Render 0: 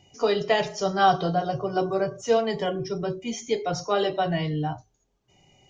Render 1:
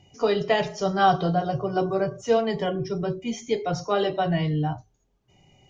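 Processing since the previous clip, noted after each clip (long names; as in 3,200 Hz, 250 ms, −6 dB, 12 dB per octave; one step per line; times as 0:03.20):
bass and treble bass +4 dB, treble −4 dB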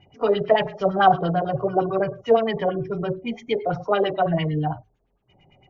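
auto-filter low-pass sine 8.9 Hz 530–3,100 Hz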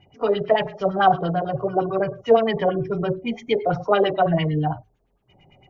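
speech leveller 2 s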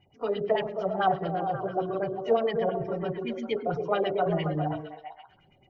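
echo through a band-pass that steps 133 ms, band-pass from 280 Hz, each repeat 0.7 octaves, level −1 dB
level −8.5 dB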